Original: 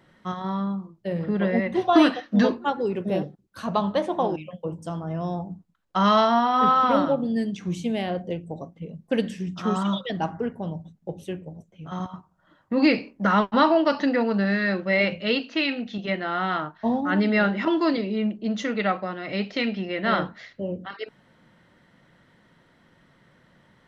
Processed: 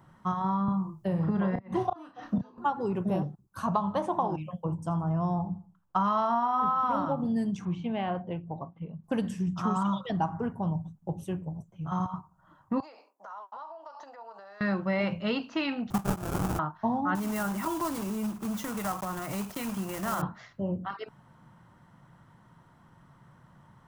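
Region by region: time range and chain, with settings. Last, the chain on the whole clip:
0:00.68–0:02.58: gate with flip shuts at −12 dBFS, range −31 dB + double-tracking delay 32 ms −7 dB + multiband upward and downward compressor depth 40%
0:04.76–0:06.79: high-shelf EQ 3,900 Hz −5 dB + repeating echo 83 ms, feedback 38%, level −19.5 dB
0:07.65–0:09.04: low-pass filter 3,000 Hz 24 dB per octave + spectral tilt +2 dB per octave
0:12.80–0:14.61: high-pass filter 620 Hz 24 dB per octave + parametric band 2,200 Hz −15 dB 2.4 octaves + downward compressor 16 to 1, threshold −41 dBFS
0:15.90–0:16.59: parametric band 830 Hz −13 dB 0.92 octaves + transient designer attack +12 dB, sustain −4 dB + sample-rate reduction 1,000 Hz, jitter 20%
0:17.15–0:20.23: one scale factor per block 3 bits + downward compressor 2.5 to 1, threshold −30 dBFS
whole clip: graphic EQ with 10 bands 125 Hz +6 dB, 250 Hz −4 dB, 500 Hz −9 dB, 1,000 Hz +8 dB, 2,000 Hz −10 dB, 4,000 Hz −10 dB; downward compressor 6 to 1, threshold −26 dBFS; level +2 dB

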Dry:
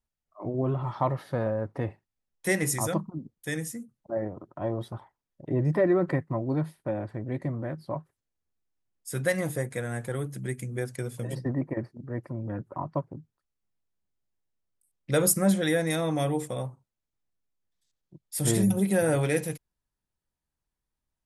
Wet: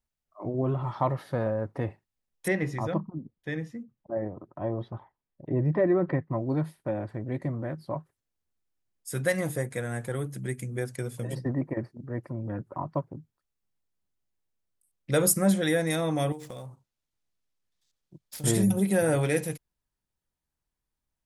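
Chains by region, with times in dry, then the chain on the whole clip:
0:02.48–0:06.33: high-frequency loss of the air 280 metres + notch filter 1,400 Hz, Q 17
0:16.32–0:18.44: running median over 5 samples + parametric band 8,200 Hz +8.5 dB 2.3 octaves + downward compressor 10 to 1, threshold −36 dBFS
whole clip: no processing

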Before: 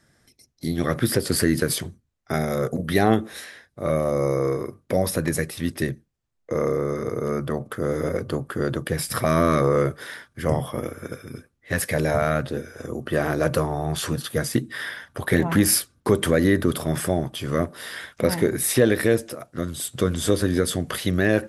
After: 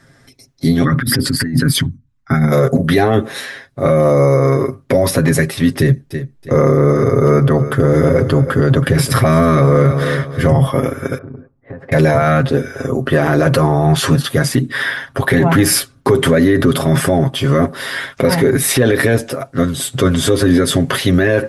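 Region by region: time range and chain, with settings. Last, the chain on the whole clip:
0:00.84–0:02.52: spectral envelope exaggerated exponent 1.5 + flat-topped bell 500 Hz −14 dB 1.2 octaves + compressor whose output falls as the input rises −26 dBFS, ratio −0.5
0:05.78–0:10.68: low-shelf EQ 120 Hz +9 dB + repeating echo 324 ms, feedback 31%, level −13.5 dB
0:11.18–0:11.92: Chebyshev low-pass filter 790 Hz + downward compressor 20 to 1, threshold −39 dBFS
whole clip: high-shelf EQ 5,600 Hz −8.5 dB; comb filter 7.4 ms, depth 69%; boost into a limiter +14 dB; level −2 dB

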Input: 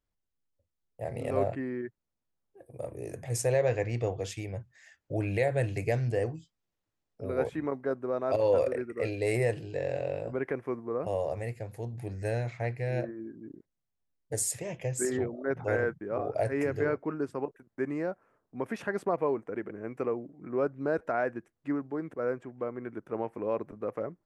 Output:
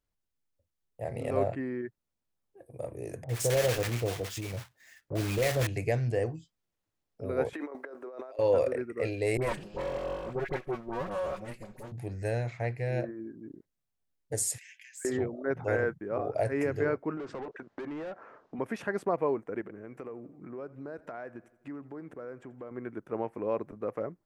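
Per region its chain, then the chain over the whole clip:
0:03.24–0:05.67: one scale factor per block 3 bits + multiband delay without the direct sound lows, highs 50 ms, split 840 Hz
0:07.53–0:08.39: high-pass filter 350 Hz 24 dB per octave + compressor whose output falls as the input rises −42 dBFS
0:09.37–0:11.92: lower of the sound and its delayed copy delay 5.4 ms + all-pass dispersion highs, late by 50 ms, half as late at 1,100 Hz
0:14.58–0:15.05: gain on one half-wave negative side −3 dB + linear-phase brick-wall high-pass 1,500 Hz + downward compressor 2 to 1, threshold −49 dBFS
0:17.17–0:18.59: low-pass filter 6,800 Hz 24 dB per octave + mid-hump overdrive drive 27 dB, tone 1,400 Hz, clips at −19.5 dBFS + downward compressor 8 to 1, threshold −36 dBFS
0:19.61–0:22.71: downward compressor 3 to 1, threshold −41 dBFS + repeating echo 85 ms, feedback 58%, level −20 dB
whole clip: no processing

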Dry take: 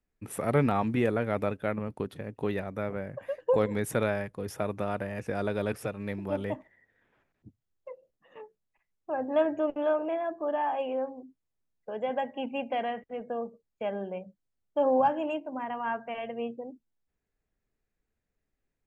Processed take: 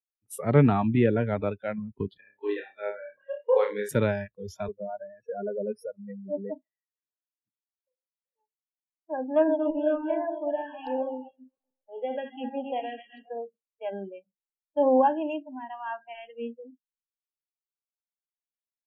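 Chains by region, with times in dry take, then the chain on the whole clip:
0:02.17–0:03.89: band-pass filter 390–6,000 Hz + notch filter 980 Hz, Q 26 + flutter between parallel walls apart 5 metres, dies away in 0.43 s
0:04.68–0:08.39: expanding power law on the bin magnitudes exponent 1.9 + high-pass filter 160 Hz
0:09.33–0:13.39: feedback delay that plays each chunk backwards 132 ms, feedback 60%, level −5.5 dB + auto-filter notch saw down 1.3 Hz 510–4,700 Hz
whole clip: noise reduction from a noise print of the clip's start 29 dB; low-shelf EQ 470 Hz +7 dB; multiband upward and downward expander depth 40%; level −2 dB

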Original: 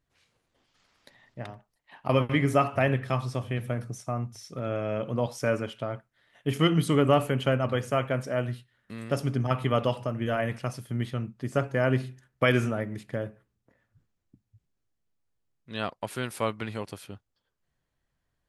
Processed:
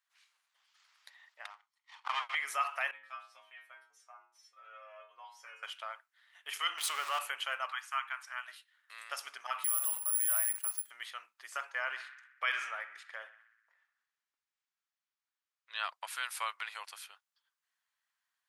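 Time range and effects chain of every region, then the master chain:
0:01.50–0:02.35: lower of the sound and its delayed copy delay 0.93 ms + low-pass filter 7,000 Hz
0:02.91–0:05.63: bass and treble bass +12 dB, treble −9 dB + stiff-string resonator 87 Hz, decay 0.56 s, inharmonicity 0.002
0:06.78–0:07.19: converter with a step at zero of −29 dBFS + highs frequency-modulated by the lows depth 0.11 ms
0:07.72–0:08.48: Butterworth high-pass 850 Hz + high-shelf EQ 2,500 Hz −7.5 dB
0:09.64–0:10.90: mu-law and A-law mismatch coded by A + high-shelf EQ 4,600 Hz −12 dB + bad sample-rate conversion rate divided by 4×, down filtered, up zero stuff
0:11.70–0:15.84: high-frequency loss of the air 60 metres + feedback echo with a band-pass in the loop 62 ms, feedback 69%, band-pass 1,700 Hz, level −12.5 dB
whole clip: brickwall limiter −15.5 dBFS; inverse Chebyshev high-pass filter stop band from 170 Hz, stop band 80 dB

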